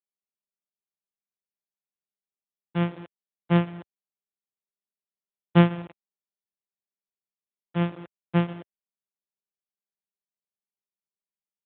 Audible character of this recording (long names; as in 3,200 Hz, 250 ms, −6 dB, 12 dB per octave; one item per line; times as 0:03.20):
a buzz of ramps at a fixed pitch in blocks of 256 samples
tremolo triangle 5.4 Hz, depth 85%
a quantiser's noise floor 8 bits, dither none
AMR narrowband